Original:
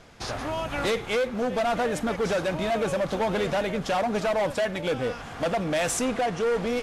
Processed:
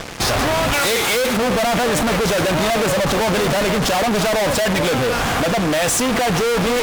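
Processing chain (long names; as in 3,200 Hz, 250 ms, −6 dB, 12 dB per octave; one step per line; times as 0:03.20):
0:00.73–0:01.37: RIAA equalisation recording
0:04.93–0:06.17: downward compressor 3 to 1, threshold −31 dBFS, peak gain reduction 6 dB
fuzz pedal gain 46 dB, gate −50 dBFS
level −3.5 dB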